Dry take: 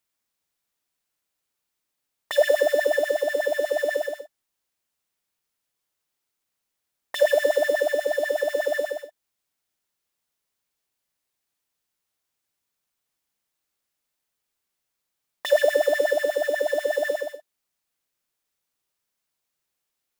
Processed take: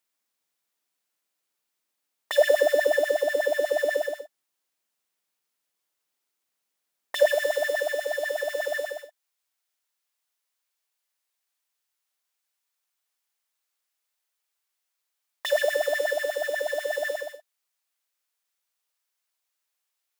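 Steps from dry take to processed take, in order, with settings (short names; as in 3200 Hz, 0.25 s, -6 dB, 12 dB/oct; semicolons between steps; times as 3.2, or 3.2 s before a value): Bessel high-pass 220 Hz, order 2, from 7.32 s 750 Hz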